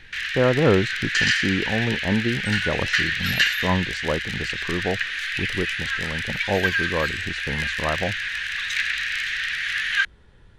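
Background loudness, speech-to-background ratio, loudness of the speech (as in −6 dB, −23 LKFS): −24.0 LKFS, −2.5 dB, −26.5 LKFS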